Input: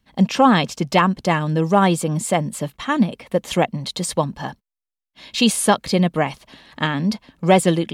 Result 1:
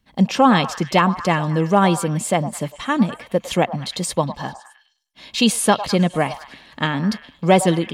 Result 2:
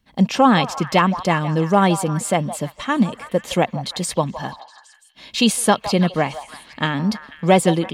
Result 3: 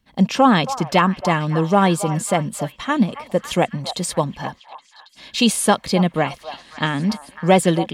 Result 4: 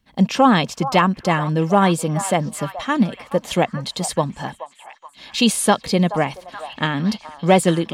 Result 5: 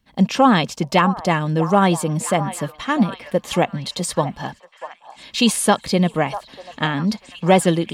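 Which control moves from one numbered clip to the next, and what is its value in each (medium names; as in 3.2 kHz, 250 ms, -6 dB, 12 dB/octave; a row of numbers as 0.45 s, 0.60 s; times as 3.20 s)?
repeats whose band climbs or falls, time: 103 ms, 163 ms, 274 ms, 426 ms, 642 ms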